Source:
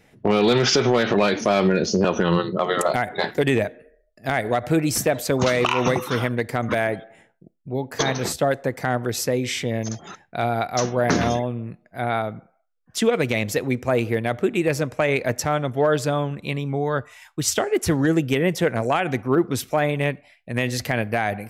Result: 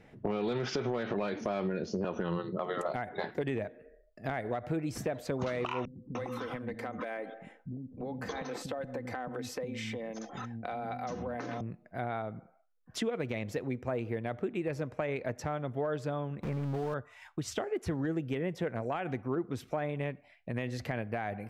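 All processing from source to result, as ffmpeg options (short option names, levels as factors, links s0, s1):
-filter_complex "[0:a]asettb=1/sr,asplit=3[s0][s1][s2];[s0]atrim=end=5.854[s3];[s1]atrim=start=5.85:end=11.61,asetpts=PTS-STARTPTS,afade=t=in:d=0.004:c=qsin,afade=t=out:st=5.756:d=0.004:c=qsin,aecho=1:1:3.9:0.48,atrim=end_sample=254016,acompressor=threshold=0.0447:ratio=4:attack=3.2:release=140:knee=1:detection=peak,acrossover=split=250[s4][s5];[s5]adelay=300[s6];[s4][s6]amix=inputs=2:normalize=0,atrim=end_sample=254016[s7];[s2]atrim=start=11.606[s8];[s3][s7]acrossfade=d=0.004:c1=hsin:c2=qsin[s9];[s9][s8]acrossfade=d=0.004:c1=qsin:c2=hsin,asettb=1/sr,asplit=3[s10][s11][s12];[s10]atrim=end=16.434[s13];[s11]atrim=start=16.43:end=16.94,asetpts=PTS-STARTPTS,afade=t=in:d=0.004:c=qsin,afade=t=out:st=0.506:d=0.004:c=qsin,aeval=exprs='val(0)+0.5*0.0422*sgn(val(0))':c=same,lowpass=f=1800:w=0.5412,lowpass=f=1800:w=1.3066,acrusher=bits=6:dc=4:mix=0:aa=0.000001[s14];[s12]atrim=start=16.936[s15];[s13][s14]acrossfade=d=0.004:c1=hsin:c2=qsin[s16];[s16][s15]acrossfade=d=0.004:c1=qsin:c2=hsin,lowpass=f=1700:p=1,acompressor=threshold=0.0141:ratio=2.5"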